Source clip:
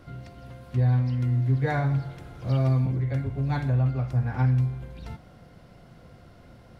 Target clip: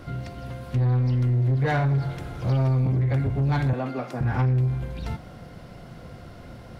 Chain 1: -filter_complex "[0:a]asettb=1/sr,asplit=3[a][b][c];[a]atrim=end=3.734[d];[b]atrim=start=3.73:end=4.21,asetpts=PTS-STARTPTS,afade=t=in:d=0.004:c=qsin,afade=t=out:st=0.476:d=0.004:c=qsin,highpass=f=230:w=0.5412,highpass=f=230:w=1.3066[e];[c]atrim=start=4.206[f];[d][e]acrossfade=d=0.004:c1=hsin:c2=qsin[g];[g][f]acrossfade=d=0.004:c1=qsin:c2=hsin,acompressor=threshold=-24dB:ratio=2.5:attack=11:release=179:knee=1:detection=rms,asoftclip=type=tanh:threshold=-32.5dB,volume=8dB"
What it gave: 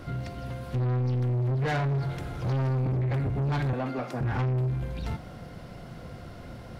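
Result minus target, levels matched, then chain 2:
soft clip: distortion +6 dB
-filter_complex "[0:a]asettb=1/sr,asplit=3[a][b][c];[a]atrim=end=3.734[d];[b]atrim=start=3.73:end=4.21,asetpts=PTS-STARTPTS,afade=t=in:d=0.004:c=qsin,afade=t=out:st=0.476:d=0.004:c=qsin,highpass=f=230:w=0.5412,highpass=f=230:w=1.3066[e];[c]atrim=start=4.206[f];[d][e]acrossfade=d=0.004:c1=hsin:c2=qsin[g];[g][f]acrossfade=d=0.004:c1=qsin:c2=hsin,acompressor=threshold=-24dB:ratio=2.5:attack=11:release=179:knee=1:detection=rms,asoftclip=type=tanh:threshold=-25.5dB,volume=8dB"

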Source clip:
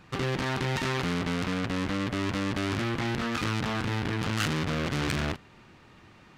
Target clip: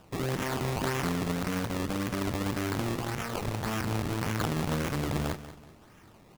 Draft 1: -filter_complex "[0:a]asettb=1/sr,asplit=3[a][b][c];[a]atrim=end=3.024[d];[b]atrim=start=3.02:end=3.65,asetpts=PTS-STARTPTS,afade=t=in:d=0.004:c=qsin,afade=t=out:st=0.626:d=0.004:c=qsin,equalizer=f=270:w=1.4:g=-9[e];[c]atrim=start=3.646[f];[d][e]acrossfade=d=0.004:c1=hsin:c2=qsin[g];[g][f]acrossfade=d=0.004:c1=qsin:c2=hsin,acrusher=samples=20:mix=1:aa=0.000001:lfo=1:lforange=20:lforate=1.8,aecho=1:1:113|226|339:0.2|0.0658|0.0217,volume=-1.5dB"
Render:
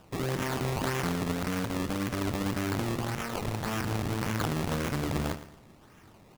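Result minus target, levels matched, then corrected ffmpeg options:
echo 75 ms early
-filter_complex "[0:a]asettb=1/sr,asplit=3[a][b][c];[a]atrim=end=3.024[d];[b]atrim=start=3.02:end=3.65,asetpts=PTS-STARTPTS,afade=t=in:d=0.004:c=qsin,afade=t=out:st=0.626:d=0.004:c=qsin,equalizer=f=270:w=1.4:g=-9[e];[c]atrim=start=3.646[f];[d][e]acrossfade=d=0.004:c1=hsin:c2=qsin[g];[g][f]acrossfade=d=0.004:c1=qsin:c2=hsin,acrusher=samples=20:mix=1:aa=0.000001:lfo=1:lforange=20:lforate=1.8,aecho=1:1:188|376|564:0.2|0.0658|0.0217,volume=-1.5dB"

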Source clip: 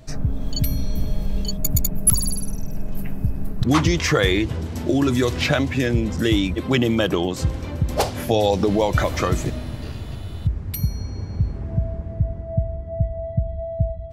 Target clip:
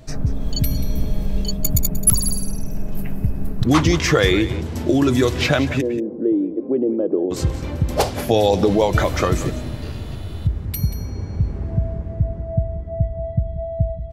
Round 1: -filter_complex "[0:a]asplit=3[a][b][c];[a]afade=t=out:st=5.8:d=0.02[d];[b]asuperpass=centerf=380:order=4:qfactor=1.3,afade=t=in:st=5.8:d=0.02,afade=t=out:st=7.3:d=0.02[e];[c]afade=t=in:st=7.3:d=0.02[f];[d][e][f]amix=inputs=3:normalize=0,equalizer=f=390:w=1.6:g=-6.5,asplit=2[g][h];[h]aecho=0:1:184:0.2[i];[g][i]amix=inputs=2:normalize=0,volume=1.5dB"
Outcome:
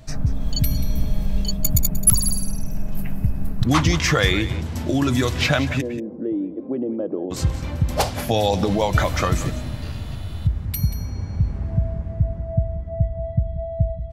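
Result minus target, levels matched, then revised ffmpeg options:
500 Hz band -3.5 dB
-filter_complex "[0:a]asplit=3[a][b][c];[a]afade=t=out:st=5.8:d=0.02[d];[b]asuperpass=centerf=380:order=4:qfactor=1.3,afade=t=in:st=5.8:d=0.02,afade=t=out:st=7.3:d=0.02[e];[c]afade=t=in:st=7.3:d=0.02[f];[d][e][f]amix=inputs=3:normalize=0,equalizer=f=390:w=1.6:g=2,asplit=2[g][h];[h]aecho=0:1:184:0.2[i];[g][i]amix=inputs=2:normalize=0,volume=1.5dB"

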